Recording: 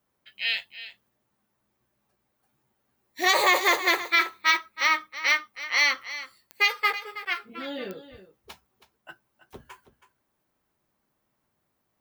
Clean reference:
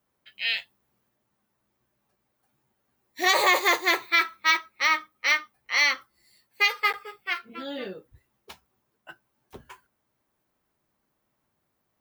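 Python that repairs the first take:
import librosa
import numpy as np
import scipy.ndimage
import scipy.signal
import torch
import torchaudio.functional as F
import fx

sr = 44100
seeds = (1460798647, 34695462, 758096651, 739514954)

y = fx.fix_declick_ar(x, sr, threshold=10.0)
y = fx.fix_echo_inverse(y, sr, delay_ms=323, level_db=-14.0)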